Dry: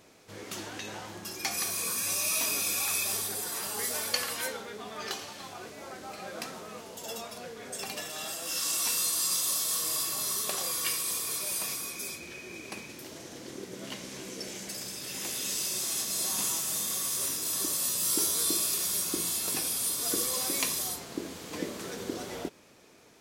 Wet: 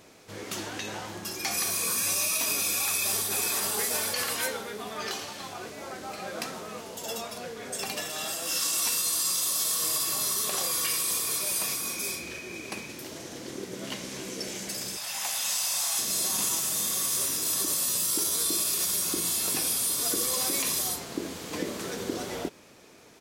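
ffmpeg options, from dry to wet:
ffmpeg -i in.wav -filter_complex "[0:a]asplit=2[link_01][link_02];[link_02]afade=type=in:start_time=2.83:duration=0.01,afade=type=out:start_time=3.49:duration=0.01,aecho=0:1:480|960|1440|1920:0.595662|0.208482|0.0729686|0.025539[link_03];[link_01][link_03]amix=inputs=2:normalize=0,asettb=1/sr,asplit=3[link_04][link_05][link_06];[link_04]atrim=end=11.814[link_07];[link_05]atrim=start=11.81:end=12.39,asetpts=PTS-STARTPTS,afade=type=in:duration=0.004:curve=qsin,afade=type=out:start_time=0.576:duration=0.004:curve=qsin,asplit=2[link_08][link_09];[link_09]adelay=42,volume=-4dB[link_10];[link_08][link_10]amix=inputs=2:normalize=0,atrim=end_sample=25578[link_11];[link_06]atrim=start=12.386[link_12];[link_07][link_11]acrossfade=duration=0.004:curve1=hsin:curve2=qsin[link_13];[link_13][link_12]acrossfade=duration=0.004:curve1=qsin:curve2=hsin,asettb=1/sr,asplit=3[link_14][link_15][link_16];[link_14]atrim=end=14.974[link_17];[link_15]atrim=start=14.97:end=15.99,asetpts=PTS-STARTPTS,afade=type=in:duration=0.004:curve=qsin,afade=type=out:start_time=1.016:duration=0.004:curve=qsin,lowshelf=frequency=550:width_type=q:width=3:gain=-12[link_18];[link_16]atrim=start=15.986[link_19];[link_17][link_18]acrossfade=duration=0.004:curve1=hsin:curve2=qsin[link_20];[link_20][link_19]acrossfade=duration=0.004:curve1=qsin:curve2=hsin,alimiter=limit=-21.5dB:level=0:latency=1:release=49,volume=4dB" out.wav

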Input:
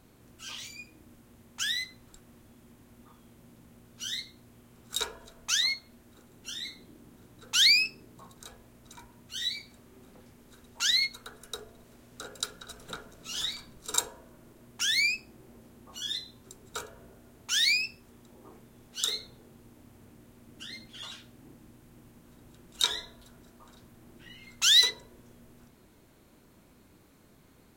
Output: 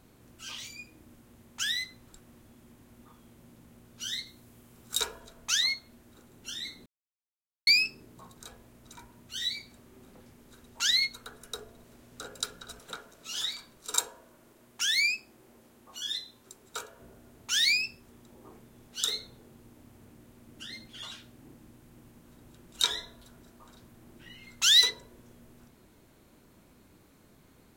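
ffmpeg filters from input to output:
ffmpeg -i in.wav -filter_complex "[0:a]asettb=1/sr,asplit=3[link_01][link_02][link_03];[link_01]atrim=end=4.264[link_04];[link_02]atrim=start=4.26:end=5.2,asetpts=PTS-STARTPTS,afade=type=in:duration=0.004:curve=qsin,afade=type=out:start_time=0.936:duration=0.004:curve=qsin,highshelf=frequency=6200:gain=5.5[link_05];[link_03]atrim=start=5.196[link_06];[link_04][link_05]acrossfade=duration=0.004:curve1=hsin:curve2=qsin[link_07];[link_07][link_06]acrossfade=duration=0.004:curve1=qsin:curve2=hsin,asettb=1/sr,asplit=3[link_08][link_09][link_10];[link_08]atrim=end=12.794[link_11];[link_09]atrim=start=12.79:end=17,asetpts=PTS-STARTPTS,afade=type=in:duration=0.004:curve=qsin,afade=type=out:start_time=4.206:duration=0.004:curve=qsin,lowshelf=frequency=250:gain=-11[link_12];[link_10]atrim=start=16.996[link_13];[link_11][link_12]acrossfade=duration=0.004:curve1=hsin:curve2=qsin[link_14];[link_14][link_13]acrossfade=duration=0.004:curve1=qsin:curve2=hsin,asplit=3[link_15][link_16][link_17];[link_15]atrim=end=6.86,asetpts=PTS-STARTPTS,afade=type=out:start_time=6.856:duration=0.004:curve=hsin[link_18];[link_16]atrim=start=6.86:end=7.67,asetpts=PTS-STARTPTS,volume=0[link_19];[link_17]atrim=start=7.67,asetpts=PTS-STARTPTS,afade=type=in:duration=0.004:curve=hsin[link_20];[link_18][link_19][link_20]concat=n=3:v=0:a=1" out.wav

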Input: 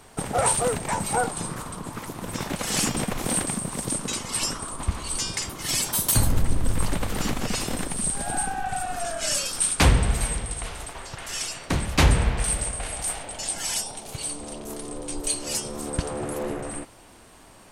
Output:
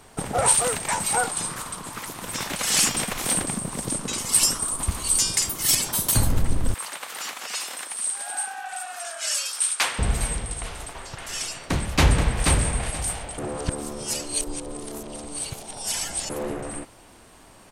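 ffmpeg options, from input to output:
ffmpeg -i in.wav -filter_complex "[0:a]asettb=1/sr,asplit=3[link_01][link_02][link_03];[link_01]atrim=end=0.484[link_04];[link_02]atrim=start=0.48:end=3.34,asetpts=PTS-STARTPTS,afade=type=in:duration=0.004:curve=qsin,afade=type=out:start_time=2.856:duration=0.004:curve=qsin,tiltshelf=frequency=850:gain=-6[link_05];[link_03]atrim=start=3.336[link_06];[link_04][link_05]acrossfade=duration=0.004:curve1=hsin:curve2=qsin[link_07];[link_07][link_06]acrossfade=duration=0.004:curve1=qsin:curve2=hsin,asettb=1/sr,asplit=3[link_08][link_09][link_10];[link_08]atrim=end=4.184[link_11];[link_09]atrim=start=4.18:end=5.75,asetpts=PTS-STARTPTS,afade=type=in:duration=0.004:curve=qsin,afade=type=out:start_time=1.566:duration=0.004:curve=qsin,aemphasis=mode=production:type=50fm[link_12];[link_10]atrim=start=5.746[link_13];[link_11][link_12]acrossfade=duration=0.004:curve1=hsin:curve2=qsin[link_14];[link_14][link_13]acrossfade=duration=0.004:curve1=qsin:curve2=hsin,asettb=1/sr,asplit=3[link_15][link_16][link_17];[link_15]atrim=end=6.744[link_18];[link_16]atrim=start=6.74:end=9.99,asetpts=PTS-STARTPTS,afade=type=in:duration=0.004:curve=qsin,afade=type=out:start_time=3.246:duration=0.004:curve=qsin,highpass=1000[link_19];[link_17]atrim=start=9.986[link_20];[link_18][link_19]acrossfade=duration=0.004:curve1=hsin:curve2=qsin[link_21];[link_21][link_20]acrossfade=duration=0.004:curve1=qsin:curve2=hsin,asplit=2[link_22][link_23];[link_23]afade=type=in:start_time=11.58:duration=0.01,afade=type=out:start_time=12.42:duration=0.01,aecho=0:1:480|960|1440:0.668344|0.133669|0.0267338[link_24];[link_22][link_24]amix=inputs=2:normalize=0,asplit=3[link_25][link_26][link_27];[link_25]atrim=end=13.382[link_28];[link_26]atrim=start=13.378:end=16.302,asetpts=PTS-STARTPTS,areverse[link_29];[link_27]atrim=start=16.298[link_30];[link_28][link_29]acrossfade=duration=0.004:curve1=hsin:curve2=hsin[link_31];[link_31][link_30]acrossfade=duration=0.004:curve1=hsin:curve2=hsin" out.wav

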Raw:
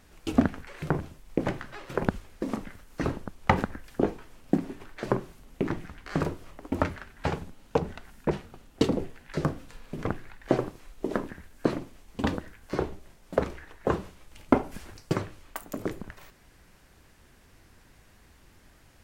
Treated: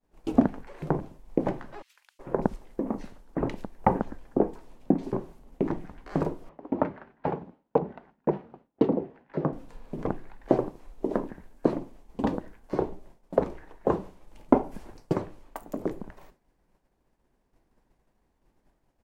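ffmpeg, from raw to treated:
ffmpeg -i in.wav -filter_complex "[0:a]asettb=1/sr,asplit=3[link_01][link_02][link_03];[link_01]atrim=end=1.824[link_04];[link_02]atrim=start=1.82:end=5.13,asetpts=PTS-STARTPTS,afade=type=in:duration=0.004:curve=qsin,afade=type=out:start_time=3.306:duration=0.004:curve=qsin,acrossover=split=2400[link_05][link_06];[link_05]adelay=370[link_07];[link_07][link_06]amix=inputs=2:normalize=0,atrim=end_sample=145971[link_08];[link_03]atrim=start=5.126[link_09];[link_04][link_08]acrossfade=duration=0.004:curve1=hsin:curve2=qsin[link_10];[link_10][link_09]acrossfade=duration=0.004:curve1=qsin:curve2=hsin,asettb=1/sr,asplit=3[link_11][link_12][link_13];[link_11]atrim=end=6.494[link_14];[link_12]atrim=start=6.49:end=9.53,asetpts=PTS-STARTPTS,afade=type=in:duration=0.004:curve=qsin,afade=type=out:start_time=3.036:duration=0.004:curve=qsin,highpass=120,lowpass=2400[link_15];[link_13]atrim=start=9.526[link_16];[link_14][link_15]acrossfade=duration=0.004:curve1=hsin:curve2=qsin[link_17];[link_17][link_16]acrossfade=duration=0.004:curve1=qsin:curve2=hsin,equalizer=frequency=87:width_type=o:width=0.99:gain=-11,agate=range=-33dB:threshold=-48dB:ratio=3:detection=peak,firequalizer=gain_entry='entry(920,0);entry(1300,-9);entry(2900,-12)':delay=0.05:min_phase=1,volume=2.5dB" out.wav

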